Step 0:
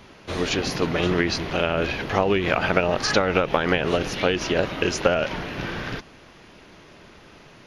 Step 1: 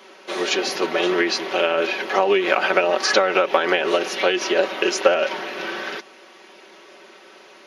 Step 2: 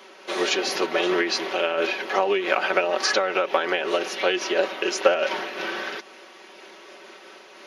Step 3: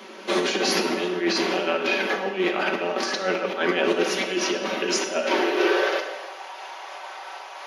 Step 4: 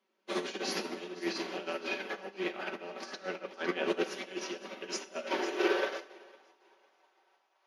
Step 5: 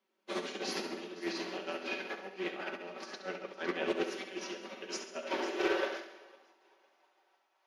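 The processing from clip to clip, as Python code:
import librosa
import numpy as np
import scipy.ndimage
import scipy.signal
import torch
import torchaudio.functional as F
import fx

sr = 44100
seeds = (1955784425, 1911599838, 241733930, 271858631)

y1 = scipy.signal.sosfilt(scipy.signal.butter(4, 310.0, 'highpass', fs=sr, output='sos'), x)
y1 = y1 + 0.65 * np.pad(y1, (int(5.3 * sr / 1000.0), 0))[:len(y1)]
y1 = y1 * librosa.db_to_amplitude(2.0)
y2 = fx.low_shelf(y1, sr, hz=130.0, db=-7.5)
y2 = fx.rider(y2, sr, range_db=4, speed_s=2.0)
y2 = fx.am_noise(y2, sr, seeds[0], hz=5.7, depth_pct=50)
y3 = fx.over_compress(y2, sr, threshold_db=-26.0, ratio=-0.5)
y3 = fx.filter_sweep_highpass(y3, sr, from_hz=200.0, to_hz=790.0, start_s=5.06, end_s=6.24, q=4.0)
y3 = fx.rev_plate(y3, sr, seeds[1], rt60_s=1.2, hf_ratio=0.85, predelay_ms=0, drr_db=4.0)
y4 = fx.echo_feedback(y3, sr, ms=507, feedback_pct=50, wet_db=-12)
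y4 = fx.upward_expand(y4, sr, threshold_db=-39.0, expansion=2.5)
y4 = y4 * librosa.db_to_amplitude(-6.0)
y5 = fx.echo_feedback(y4, sr, ms=68, feedback_pct=54, wet_db=-9.5)
y5 = fx.doppler_dist(y5, sr, depth_ms=0.11)
y5 = y5 * librosa.db_to_amplitude(-2.5)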